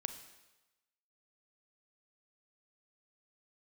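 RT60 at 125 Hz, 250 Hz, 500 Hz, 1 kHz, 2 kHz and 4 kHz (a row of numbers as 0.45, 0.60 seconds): 0.95, 0.90, 1.0, 1.1, 1.0, 1.0 seconds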